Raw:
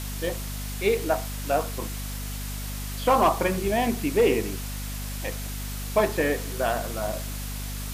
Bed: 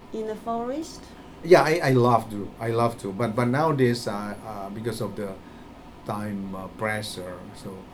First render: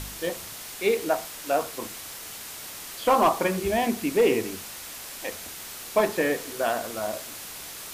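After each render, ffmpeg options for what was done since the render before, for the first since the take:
-af "bandreject=f=50:t=h:w=4,bandreject=f=100:t=h:w=4,bandreject=f=150:t=h:w=4,bandreject=f=200:t=h:w=4,bandreject=f=250:t=h:w=4"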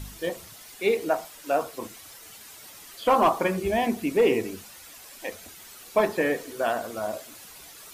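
-af "afftdn=nr=10:nf=-40"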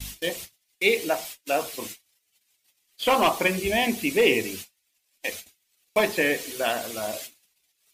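-af "agate=range=0.0158:threshold=0.00891:ratio=16:detection=peak,highshelf=f=1800:t=q:w=1.5:g=8"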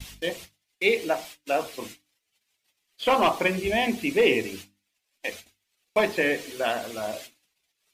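-af "lowpass=f=3500:p=1,bandreject=f=50:t=h:w=6,bandreject=f=100:t=h:w=6,bandreject=f=150:t=h:w=6,bandreject=f=200:t=h:w=6,bandreject=f=250:t=h:w=6,bandreject=f=300:t=h:w=6"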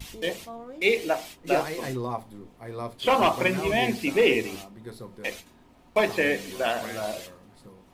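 -filter_complex "[1:a]volume=0.251[s0];[0:a][s0]amix=inputs=2:normalize=0"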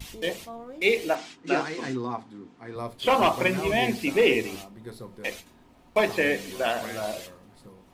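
-filter_complex "[0:a]asettb=1/sr,asplit=3[s0][s1][s2];[s0]atrim=end=1.154[s3];[s1]atrim=start=1.15:end=2.76,asetpts=PTS-STARTPTS,afade=t=in:d=0.004:c=qsin,afade=t=out:st=1.606:d=0.004:c=qsin,highpass=140,equalizer=f=270:t=q:w=4:g=6,equalizer=f=580:t=q:w=4:g=-9,equalizer=f=1500:t=q:w=4:g=5,lowpass=f=7200:w=0.5412,lowpass=f=7200:w=1.3066[s4];[s2]atrim=start=2.756[s5];[s3][s4]acrossfade=d=0.004:c1=hsin:c2=qsin[s6];[s6][s5]acrossfade=d=0.004:c1=qsin:c2=hsin"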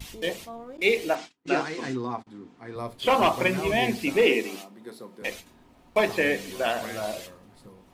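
-filter_complex "[0:a]asettb=1/sr,asplit=3[s0][s1][s2];[s0]atrim=end=0.774[s3];[s1]atrim=start=0.77:end=2.27,asetpts=PTS-STARTPTS,afade=t=in:d=0.004:c=qsin,afade=t=out:st=1.496:d=0.004:c=qsin,agate=range=0.0501:threshold=0.00708:ratio=16:release=100:detection=peak[s4];[s2]atrim=start=2.266[s5];[s3][s4]acrossfade=d=0.004:c1=hsin:c2=qsin[s6];[s6][s5]acrossfade=d=0.004:c1=qsin:c2=hsin,asettb=1/sr,asplit=3[s7][s8][s9];[s7]atrim=end=4.264[s10];[s8]atrim=start=4.26:end=5.22,asetpts=PTS-STARTPTS,afade=t=in:d=0.004:c=qsin,afade=t=out:st=0.956:d=0.004:c=qsin,highpass=f=190:w=0.5412,highpass=f=190:w=1.3066[s11];[s9]atrim=start=5.216[s12];[s10][s11]acrossfade=d=0.004:c1=hsin:c2=qsin[s13];[s13][s12]acrossfade=d=0.004:c1=qsin:c2=hsin"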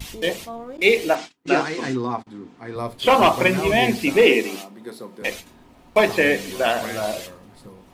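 -af "volume=2"

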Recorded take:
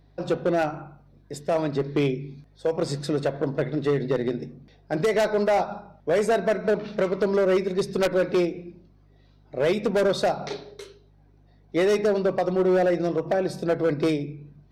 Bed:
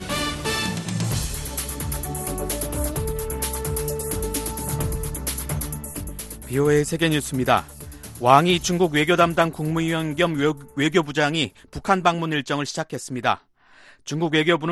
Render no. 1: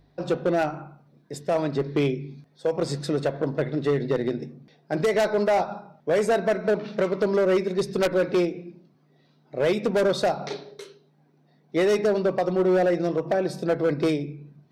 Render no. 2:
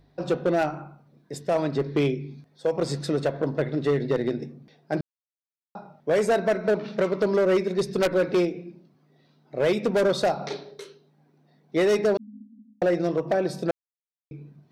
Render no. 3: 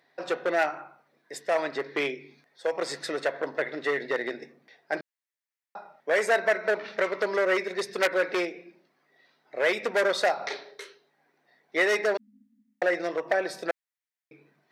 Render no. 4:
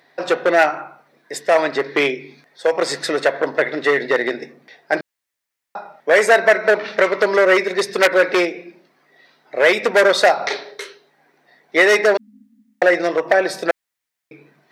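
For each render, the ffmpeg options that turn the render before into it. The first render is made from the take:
-af "bandreject=f=50:t=h:w=4,bandreject=f=100:t=h:w=4"
-filter_complex "[0:a]asettb=1/sr,asplit=3[s0][s1][s2];[s0]atrim=end=12.174[s3];[s1]atrim=start=12.17:end=12.82,asetpts=PTS-STARTPTS,afade=t=in:d=0.004:c=qsin,afade=t=out:st=0.646:d=0.004:c=qsin,asuperpass=centerf=240:order=20:qfactor=3.6[s4];[s2]atrim=start=12.816[s5];[s3][s4]acrossfade=d=0.004:c1=hsin:c2=qsin[s6];[s6][s5]acrossfade=d=0.004:c1=qsin:c2=hsin,asplit=5[s7][s8][s9][s10][s11];[s7]atrim=end=5.01,asetpts=PTS-STARTPTS,afade=t=out:st=5.006:d=0.004:c=hsin[s12];[s8]atrim=start=5.01:end=5.75,asetpts=PTS-STARTPTS,volume=0[s13];[s9]atrim=start=5.75:end=13.71,asetpts=PTS-STARTPTS,afade=t=in:d=0.004:c=hsin,afade=t=out:st=7.956:d=0.004:c=hsin[s14];[s10]atrim=start=13.71:end=14.31,asetpts=PTS-STARTPTS,volume=0[s15];[s11]atrim=start=14.31,asetpts=PTS-STARTPTS,afade=t=in:d=0.004:c=hsin[s16];[s12][s13][s14][s15][s16]concat=n=5:v=0:a=1"
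-af "highpass=540,equalizer=f=1900:t=o:w=0.59:g=10"
-af "volume=3.55,alimiter=limit=0.891:level=0:latency=1"

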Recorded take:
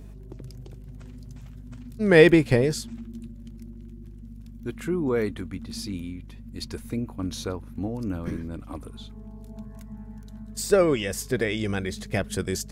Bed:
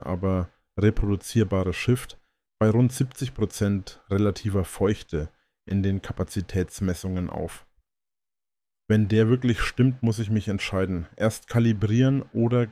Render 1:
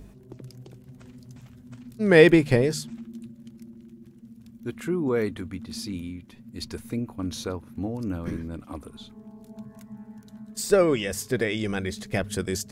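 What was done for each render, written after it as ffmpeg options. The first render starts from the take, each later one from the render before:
-af "bandreject=f=50:t=h:w=4,bandreject=f=100:t=h:w=4,bandreject=f=150:t=h:w=4"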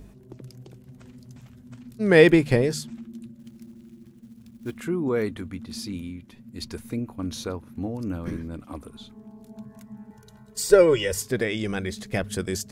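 -filter_complex "[0:a]asettb=1/sr,asplit=3[s0][s1][s2];[s0]atrim=end=3.394[s3];[s1]atrim=start=3.39:end=4.78,asetpts=PTS-STARTPTS,afade=t=in:d=0.004:c=qsin,afade=t=out:st=1.386:d=0.004:c=qsin,acrusher=bits=6:mode=log:mix=0:aa=0.000001[s4];[s2]atrim=start=4.776[s5];[s3][s4]acrossfade=d=0.004:c1=hsin:c2=qsin[s6];[s6][s5]acrossfade=d=0.004:c1=qsin:c2=hsin,asettb=1/sr,asplit=3[s7][s8][s9];[s7]atrim=end=10.104[s10];[s8]atrim=start=10.1:end=11.22,asetpts=PTS-STARTPTS,afade=t=in:d=0.004:c=qsin,afade=t=out:st=1.116:d=0.004:c=qsin,aecho=1:1:2.1:0.92,atrim=end_sample=49392[s11];[s9]atrim=start=11.216[s12];[s10][s11]acrossfade=d=0.004:c1=hsin:c2=qsin[s13];[s13][s12]acrossfade=d=0.004:c1=qsin:c2=hsin"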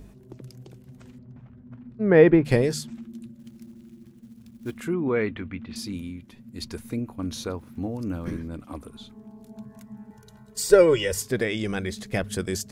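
-filter_complex "[0:a]asettb=1/sr,asplit=3[s0][s1][s2];[s0]atrim=end=1.184[s3];[s1]atrim=start=1.18:end=2.45,asetpts=PTS-STARTPTS,afade=t=in:d=0.004:c=qsin,afade=t=out:st=1.266:d=0.004:c=qsin,lowpass=1500[s4];[s2]atrim=start=2.446[s5];[s3][s4]acrossfade=d=0.004:c1=hsin:c2=qsin[s6];[s6][s5]acrossfade=d=0.004:c1=qsin:c2=hsin,asettb=1/sr,asplit=3[s7][s8][s9];[s7]atrim=end=4.934[s10];[s8]atrim=start=4.93:end=5.76,asetpts=PTS-STARTPTS,afade=t=in:d=0.004:c=qsin,afade=t=out:st=0.826:d=0.004:c=qsin,lowpass=f=2500:t=q:w=2[s11];[s9]atrim=start=5.756[s12];[s10][s11]acrossfade=d=0.004:c1=hsin:c2=qsin[s13];[s13][s12]acrossfade=d=0.004:c1=qsin:c2=hsin,asettb=1/sr,asplit=3[s14][s15][s16];[s14]atrim=end=7.564[s17];[s15]atrim=start=7.56:end=8.33,asetpts=PTS-STARTPTS,afade=t=in:d=0.004:c=qsin,afade=t=out:st=0.766:d=0.004:c=qsin,aeval=exprs='val(0)*gte(abs(val(0)),0.00158)':c=same[s18];[s16]atrim=start=8.326[s19];[s17][s18]acrossfade=d=0.004:c1=hsin:c2=qsin[s20];[s20][s19]acrossfade=d=0.004:c1=qsin:c2=hsin"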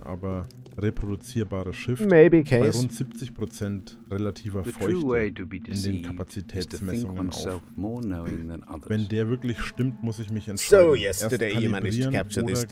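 -filter_complex "[1:a]volume=0.501[s0];[0:a][s0]amix=inputs=2:normalize=0"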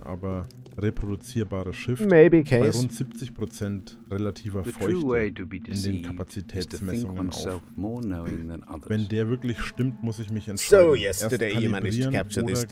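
-af anull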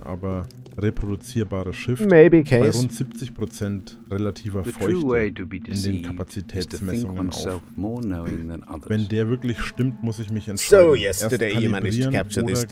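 -af "volume=1.5,alimiter=limit=0.891:level=0:latency=1"

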